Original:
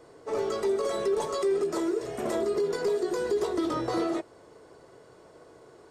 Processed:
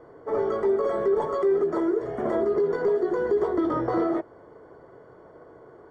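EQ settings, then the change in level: polynomial smoothing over 41 samples; +4.0 dB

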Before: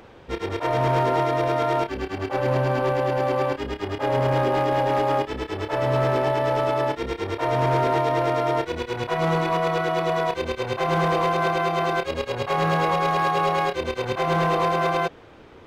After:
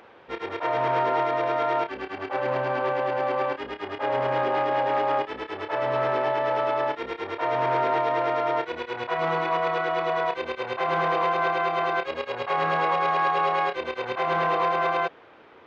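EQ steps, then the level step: HPF 1500 Hz 6 dB/oct; tape spacing loss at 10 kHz 33 dB; +8.0 dB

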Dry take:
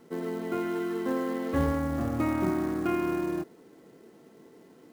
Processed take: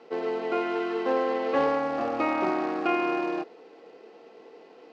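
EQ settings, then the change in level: speaker cabinet 390–5200 Hz, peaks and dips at 480 Hz +8 dB, 770 Hz +9 dB, 1200 Hz +3 dB, 2600 Hz +9 dB, 4600 Hz +4 dB; +3.0 dB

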